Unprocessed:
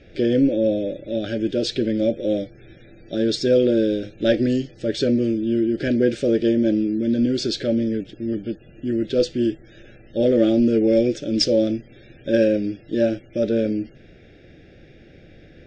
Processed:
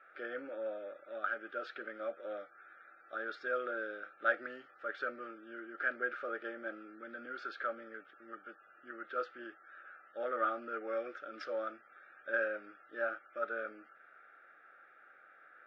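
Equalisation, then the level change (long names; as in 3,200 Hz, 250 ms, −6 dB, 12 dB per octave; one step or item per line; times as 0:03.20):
flat-topped band-pass 1,200 Hz, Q 3.8
+14.5 dB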